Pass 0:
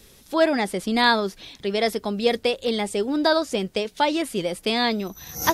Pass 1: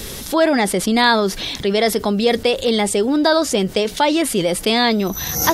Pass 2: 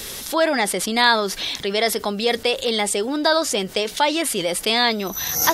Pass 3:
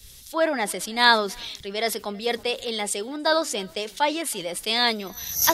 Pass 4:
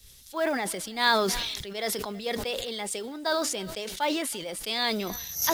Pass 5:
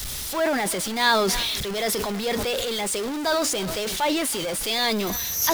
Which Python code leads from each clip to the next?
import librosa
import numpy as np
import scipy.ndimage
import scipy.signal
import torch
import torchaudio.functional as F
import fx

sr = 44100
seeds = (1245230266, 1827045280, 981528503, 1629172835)

y1 = fx.notch(x, sr, hz=2500.0, q=23.0)
y1 = fx.env_flatten(y1, sr, amount_pct=50)
y1 = y1 * librosa.db_to_amplitude(2.5)
y2 = fx.low_shelf(y1, sr, hz=420.0, db=-11.0)
y3 = y2 + 10.0 ** (-21.0 / 20.0) * np.pad(y2, (int(325 * sr / 1000.0), 0))[:len(y2)]
y3 = fx.band_widen(y3, sr, depth_pct=100)
y3 = y3 * librosa.db_to_amplitude(-5.0)
y4 = fx.quant_companded(y3, sr, bits=6)
y4 = fx.sustainer(y4, sr, db_per_s=33.0)
y4 = y4 * librosa.db_to_amplitude(-6.5)
y5 = y4 + 0.5 * 10.0 ** (-27.5 / 20.0) * np.sign(y4)
y5 = y5 * librosa.db_to_amplitude(1.5)